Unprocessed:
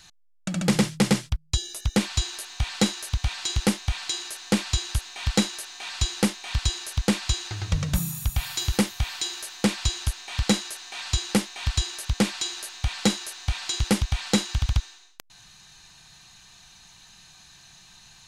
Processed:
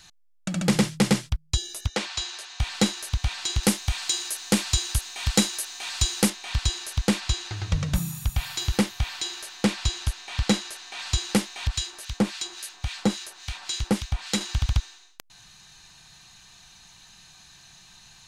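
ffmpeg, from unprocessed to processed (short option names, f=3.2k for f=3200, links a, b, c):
-filter_complex "[0:a]asettb=1/sr,asplit=3[a][b][c];[a]atrim=end=1.874[d];[b]atrim=start=1.87:end=2.6,asetpts=PTS-STARTPTS,afade=t=in:d=0.004:c=qsin,afade=t=out:st=0.726:d=0.004:c=qsin,acrossover=split=380 7900:gain=0.158 1 0.141[e][f][g];[e][f][g]amix=inputs=3:normalize=0[h];[c]atrim=start=2.596[i];[d][h]acrossfade=d=0.004:c1=hsin:c2=qsin[j];[j][i]acrossfade=d=0.004:c1=qsin:c2=hsin,asettb=1/sr,asplit=3[k][l][m];[k]atrim=end=3.634[n];[l]atrim=start=3.63:end=6.3,asetpts=PTS-STARTPTS,afade=t=in:d=0.004:c=qsin,afade=t=out:st=2.666:d=0.004:c=qsin,highshelf=f=6.9k:g=10[o];[m]atrim=start=6.296[p];[n][o]acrossfade=d=0.004:c1=hsin:c2=qsin[q];[q][p]acrossfade=d=0.004:c1=qsin:c2=hsin,asettb=1/sr,asplit=3[r][s][t];[r]atrim=end=7.204[u];[s]atrim=start=7.2:end=11,asetpts=PTS-STARTPTS,afade=t=in:d=0.004:c=qsin,afade=t=out:st=3.796:d=0.004:c=qsin,highshelf=f=7.9k:g=-6[v];[t]atrim=start=10.996[w];[u][v]acrossfade=d=0.004:c1=hsin:c2=qsin[x];[x][w]acrossfade=d=0.004:c1=qsin:c2=hsin,asettb=1/sr,asplit=3[y][z][aa];[y]atrim=end=11.674[ab];[z]atrim=start=11.67:end=14.41,asetpts=PTS-STARTPTS,afade=t=in:d=0.004:c=qsin,afade=t=out:st=2.736:d=0.004:c=qsin,acrossover=split=1400[ac][ad];[ac]aeval=exprs='val(0)*(1-0.7/2+0.7/2*cos(2*PI*3.6*n/s))':c=same[ae];[ad]aeval=exprs='val(0)*(1-0.7/2-0.7/2*cos(2*PI*3.6*n/s))':c=same[af];[ae][af]amix=inputs=2:normalize=0[ag];[aa]atrim=start=14.406[ah];[ab][ag]acrossfade=d=0.004:c1=hsin:c2=qsin[ai];[ai][ah]acrossfade=d=0.004:c1=qsin:c2=hsin"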